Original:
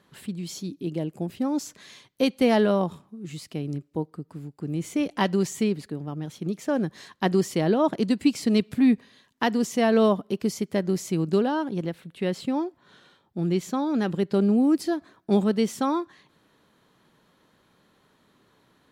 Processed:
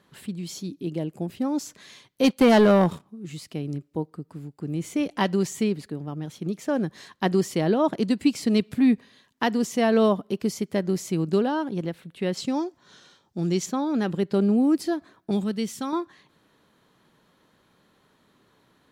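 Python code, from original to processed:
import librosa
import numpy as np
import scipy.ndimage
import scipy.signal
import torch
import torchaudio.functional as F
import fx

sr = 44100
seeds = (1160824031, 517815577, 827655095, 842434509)

y = fx.leveller(x, sr, passes=2, at=(2.24, 3.06))
y = fx.peak_eq(y, sr, hz=6000.0, db=13.0, octaves=0.9, at=(12.37, 13.66))
y = fx.peak_eq(y, sr, hz=650.0, db=-8.5, octaves=2.8, at=(15.31, 15.93))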